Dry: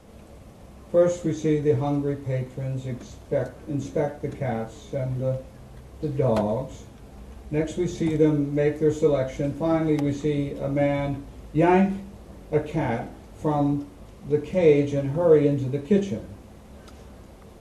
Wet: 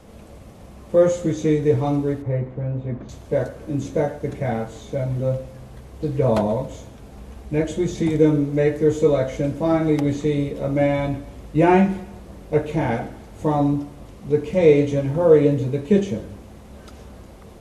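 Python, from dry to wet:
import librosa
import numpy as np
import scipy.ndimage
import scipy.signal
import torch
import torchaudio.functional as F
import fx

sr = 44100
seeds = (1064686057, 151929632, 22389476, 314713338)

y = fx.lowpass(x, sr, hz=1600.0, slope=12, at=(2.22, 3.09))
y = fx.echo_feedback(y, sr, ms=139, feedback_pct=47, wet_db=-21)
y = y * librosa.db_to_amplitude(3.5)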